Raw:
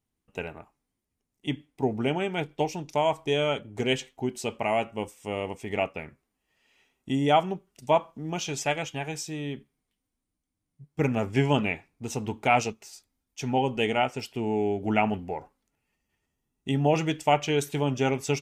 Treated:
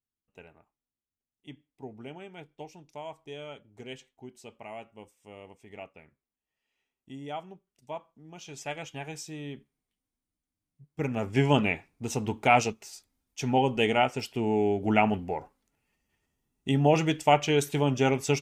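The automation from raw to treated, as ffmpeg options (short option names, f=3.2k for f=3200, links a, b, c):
-af "volume=1dB,afade=t=in:st=8.33:d=0.67:silence=0.298538,afade=t=in:st=11.08:d=0.46:silence=0.473151"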